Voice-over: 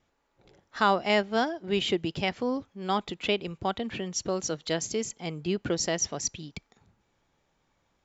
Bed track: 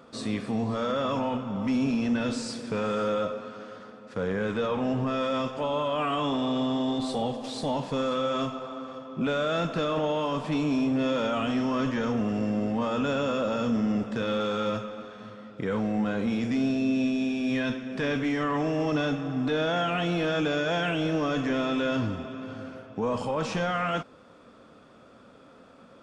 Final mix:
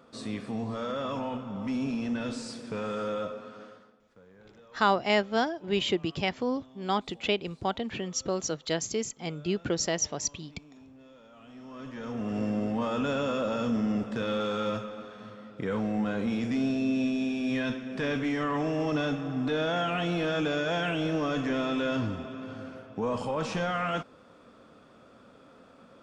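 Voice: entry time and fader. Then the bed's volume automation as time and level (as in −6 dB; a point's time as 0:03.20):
4.00 s, −0.5 dB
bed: 0:03.65 −5 dB
0:04.24 −27.5 dB
0:11.28 −27.5 dB
0:12.39 −2 dB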